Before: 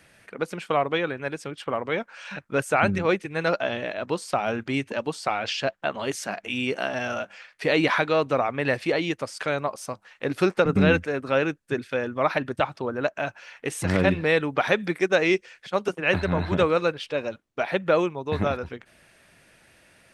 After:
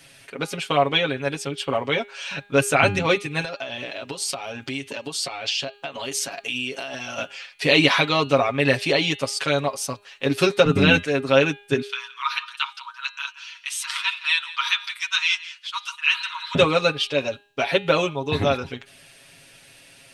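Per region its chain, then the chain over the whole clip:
0:03.41–0:07.18: bass and treble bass −4 dB, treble +2 dB + downward compressor 16 to 1, threshold −31 dBFS
0:11.82–0:16.55: Chebyshev high-pass with heavy ripple 920 Hz, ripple 6 dB + single-tap delay 171 ms −17 dB
whole clip: high shelf with overshoot 2,300 Hz +6.5 dB, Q 1.5; comb filter 7.3 ms, depth 85%; hum removal 203.9 Hz, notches 22; level +1.5 dB

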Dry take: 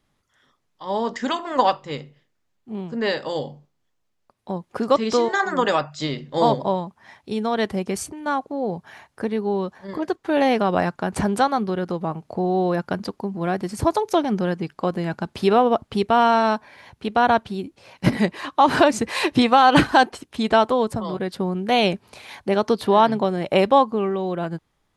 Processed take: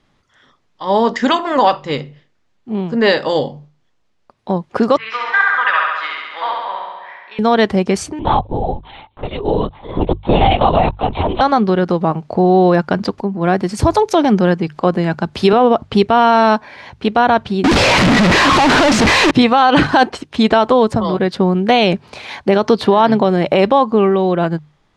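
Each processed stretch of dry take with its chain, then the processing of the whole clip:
0:04.97–0:07.39: flat-topped band-pass 1,800 Hz, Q 1.3 + flutter between parallel walls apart 11.6 metres, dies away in 1.4 s
0:08.19–0:11.41: high-shelf EQ 2,300 Hz +10 dB + phaser with its sweep stopped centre 320 Hz, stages 8 + linear-prediction vocoder at 8 kHz whisper
0:13.18–0:15.53: high-shelf EQ 10,000 Hz +8.5 dB + upward compression, threshold −30 dBFS + multiband upward and downward expander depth 40%
0:17.64–0:19.31: sign of each sample alone + high-shelf EQ 8,500 Hz −9.5 dB
whole clip: low-pass filter 5,600 Hz 12 dB per octave; mains-hum notches 50/100/150 Hz; boost into a limiter +11.5 dB; level −1 dB

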